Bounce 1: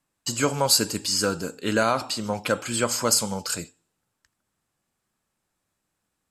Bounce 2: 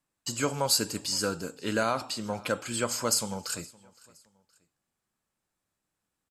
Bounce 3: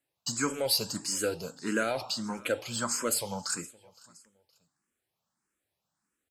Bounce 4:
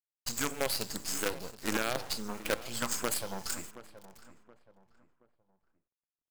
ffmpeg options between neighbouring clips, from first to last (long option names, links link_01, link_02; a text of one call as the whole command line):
ffmpeg -i in.wav -af "aecho=1:1:517|1034:0.0668|0.0247,volume=-5.5dB" out.wav
ffmpeg -i in.wav -filter_complex "[0:a]highpass=frequency=110:poles=1,asplit=2[link_01][link_02];[link_02]asoftclip=type=tanh:threshold=-29dB,volume=-7dB[link_03];[link_01][link_03]amix=inputs=2:normalize=0,asplit=2[link_04][link_05];[link_05]afreqshift=1.6[link_06];[link_04][link_06]amix=inputs=2:normalize=1" out.wav
ffmpeg -i in.wav -filter_complex "[0:a]alimiter=limit=-21dB:level=0:latency=1:release=38,acrusher=bits=5:dc=4:mix=0:aa=0.000001,asplit=2[link_01][link_02];[link_02]adelay=724,lowpass=frequency=1700:poles=1,volume=-15dB,asplit=2[link_03][link_04];[link_04]adelay=724,lowpass=frequency=1700:poles=1,volume=0.37,asplit=2[link_05][link_06];[link_06]adelay=724,lowpass=frequency=1700:poles=1,volume=0.37[link_07];[link_01][link_03][link_05][link_07]amix=inputs=4:normalize=0" out.wav